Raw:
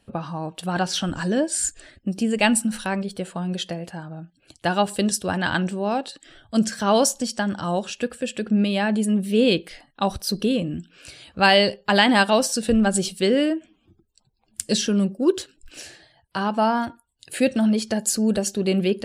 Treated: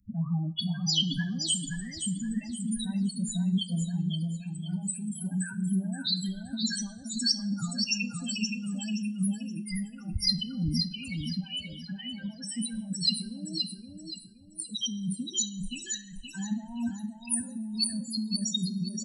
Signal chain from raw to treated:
high-shelf EQ 6,800 Hz +9 dB
compressor whose output falls as the input rises −28 dBFS, ratio −1
spectral peaks only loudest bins 4
phaser swept by the level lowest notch 570 Hz, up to 3,700 Hz, full sweep at −25 dBFS
drawn EQ curve 240 Hz 0 dB, 430 Hz −27 dB, 3,000 Hz +13 dB
repeating echo 523 ms, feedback 32%, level −5 dB
coupled-rooms reverb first 0.52 s, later 1.8 s, from −18 dB, DRR 11 dB
level −1.5 dB

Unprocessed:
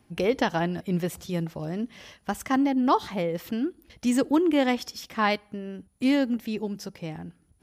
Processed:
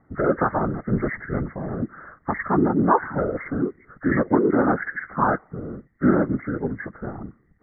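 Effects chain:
hearing-aid frequency compression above 1,100 Hz 4 to 1
random phases in short frames
low-pass that shuts in the quiet parts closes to 1,100 Hz, open at −19.5 dBFS
level +3 dB

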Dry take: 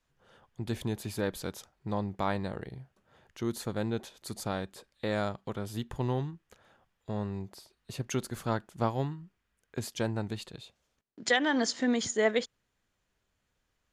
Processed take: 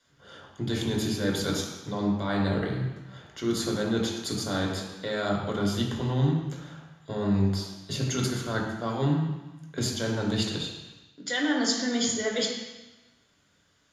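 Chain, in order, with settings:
low-pass filter 12,000 Hz 12 dB per octave
low-shelf EQ 180 Hz −10.5 dB
reversed playback
downward compressor 12 to 1, threshold −38 dBFS, peak gain reduction 17.5 dB
reversed playback
convolution reverb RT60 1.1 s, pre-delay 3 ms, DRR −2 dB
level +6.5 dB

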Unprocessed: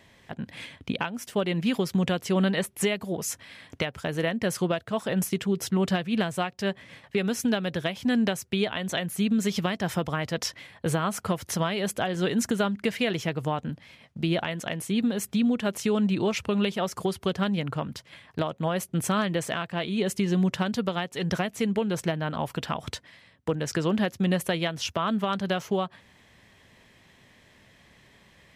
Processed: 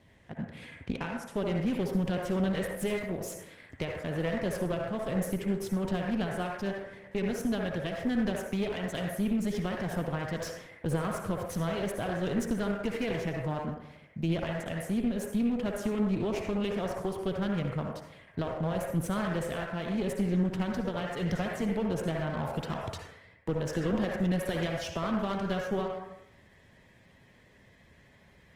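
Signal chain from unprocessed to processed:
on a send at −3.5 dB: graphic EQ with 10 bands 125 Hz −9 dB, 250 Hz −8 dB, 500 Hz +6 dB, 2,000 Hz +9 dB, 4,000 Hz −8 dB + convolution reverb RT60 0.80 s, pre-delay 52 ms
on the sum: asymmetric clip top −28.5 dBFS, bottom −14 dBFS
low-shelf EQ 430 Hz +9 dB
level −8.5 dB
Opus 20 kbit/s 48,000 Hz

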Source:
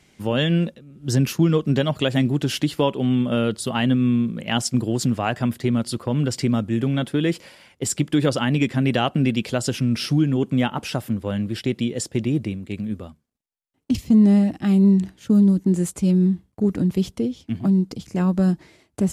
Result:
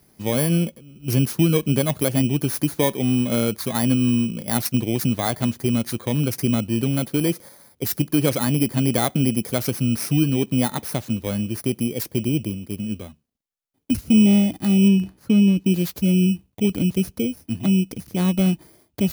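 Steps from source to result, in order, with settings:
samples in bit-reversed order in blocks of 16 samples
0:14.88–0:15.65: low-pass filter 4,000 Hz 6 dB per octave

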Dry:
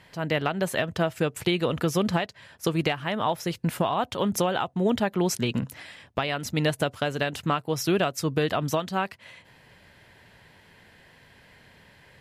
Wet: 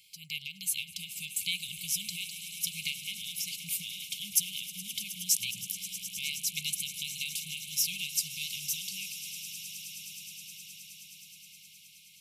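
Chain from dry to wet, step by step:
linear-phase brick-wall band-stop 210–2,100 Hz
first-order pre-emphasis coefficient 0.97
echo that builds up and dies away 105 ms, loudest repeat 8, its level −17 dB
level +5.5 dB

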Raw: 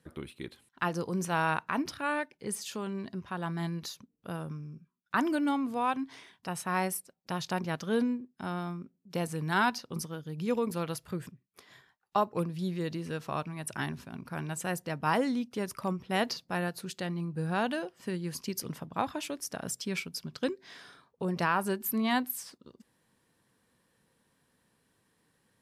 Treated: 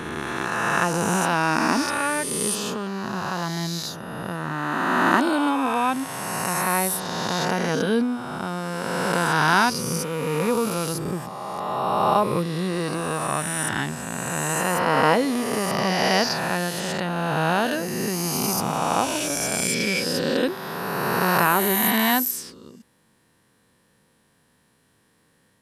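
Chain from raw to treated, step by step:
peak hold with a rise ahead of every peak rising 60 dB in 2.83 s
level +5 dB

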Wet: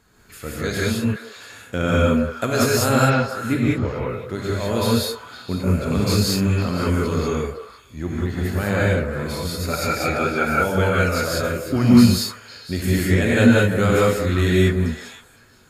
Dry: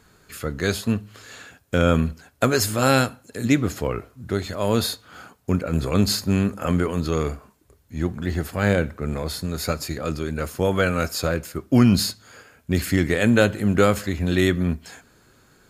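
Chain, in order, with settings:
0:00.95–0:01.36: Chebyshev high-pass with heavy ripple 380 Hz, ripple 3 dB
0:02.89–0:03.93: high-frequency loss of the air 240 metres
0:09.73–0:10.53: hollow resonant body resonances 770/1,400/2,300 Hz, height 17 dB, ringing for 20 ms
on a send: echo through a band-pass that steps 170 ms, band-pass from 530 Hz, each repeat 1.4 octaves, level −6.5 dB
on the sum: reverb whose tail is shaped and stops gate 220 ms rising, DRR −5.5 dB
level −4.5 dB

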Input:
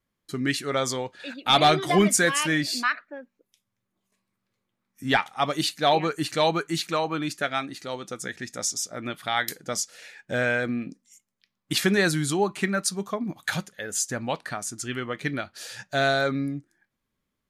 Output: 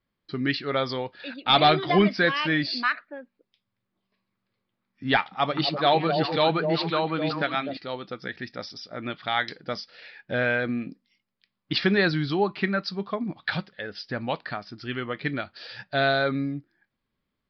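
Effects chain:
0:05.19–0:07.77: echo through a band-pass that steps 126 ms, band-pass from 190 Hz, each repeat 1.4 octaves, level 0 dB
downsampling to 11,025 Hz

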